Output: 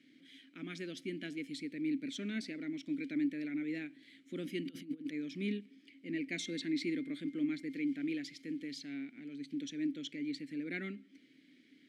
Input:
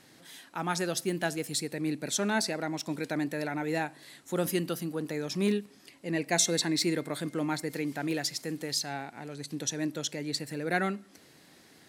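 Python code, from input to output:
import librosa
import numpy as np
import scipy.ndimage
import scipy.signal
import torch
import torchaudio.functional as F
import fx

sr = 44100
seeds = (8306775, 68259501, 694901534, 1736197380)

y = fx.over_compress(x, sr, threshold_db=-39.0, ratio=-0.5, at=(4.64, 5.11), fade=0.02)
y = fx.vowel_filter(y, sr, vowel='i')
y = y * 10.0 ** (4.5 / 20.0)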